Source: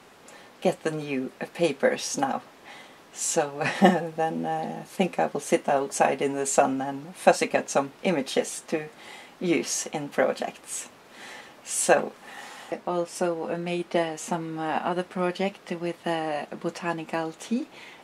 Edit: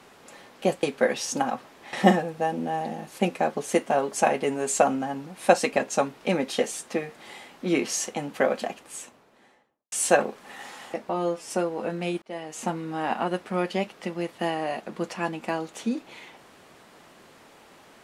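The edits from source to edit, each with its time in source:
0.83–1.65 cut
2.75–3.71 cut
10.34–11.7 studio fade out
12.87–13.13 stretch 1.5×
13.87–14.31 fade in

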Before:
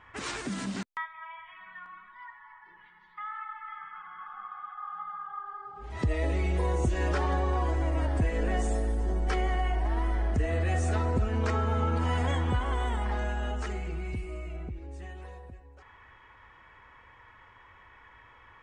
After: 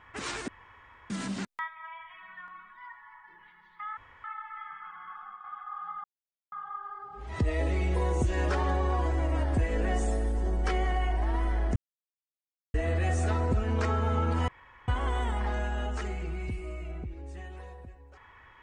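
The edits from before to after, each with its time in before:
0.48 insert room tone 0.62 s
3.35 insert room tone 0.27 s
4.15–4.55 fade out equal-power, to -7 dB
5.15 insert silence 0.48 s
10.39 insert silence 0.98 s
12.13–12.53 room tone

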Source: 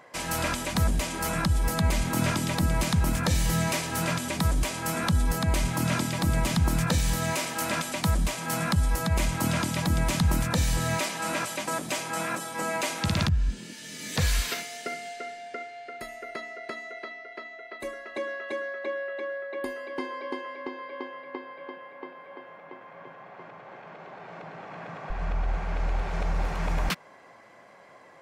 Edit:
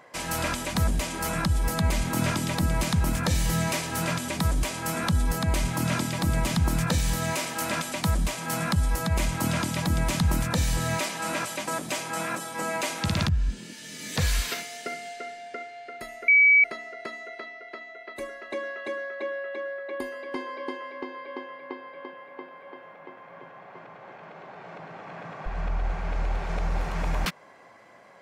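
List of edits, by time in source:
16.28 add tone 2280 Hz -13.5 dBFS 0.36 s

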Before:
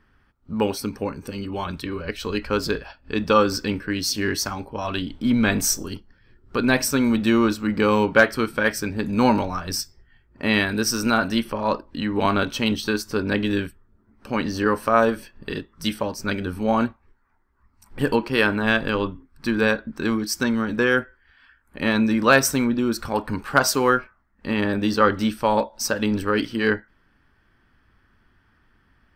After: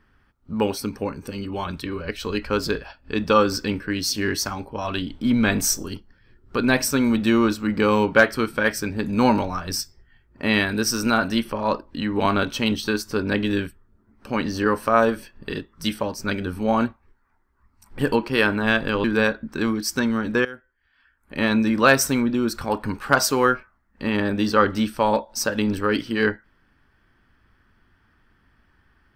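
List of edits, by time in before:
19.04–19.48 cut
20.89–21.84 fade in quadratic, from -17.5 dB

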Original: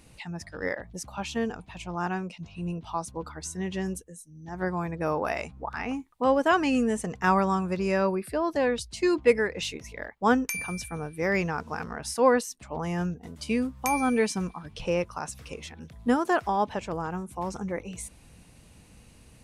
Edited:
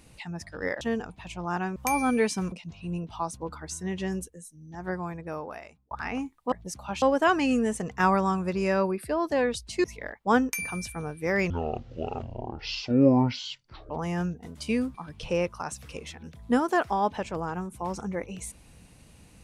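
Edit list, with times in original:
0.81–1.31 move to 6.26
4.31–5.65 fade out
9.08–9.8 cut
11.46–12.71 speed 52%
13.75–14.51 move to 2.26

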